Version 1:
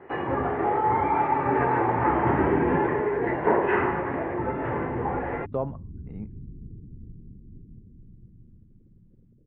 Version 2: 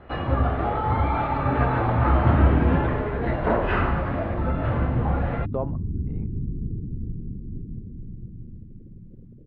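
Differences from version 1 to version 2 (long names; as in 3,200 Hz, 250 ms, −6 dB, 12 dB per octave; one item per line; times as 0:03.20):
first sound: remove loudspeaker in its box 190–2,400 Hz, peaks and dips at 230 Hz −5 dB, 390 Hz +9 dB, 630 Hz −6 dB, 900 Hz +6 dB, 1,300 Hz −6 dB, 1,900 Hz +5 dB
second sound +12.0 dB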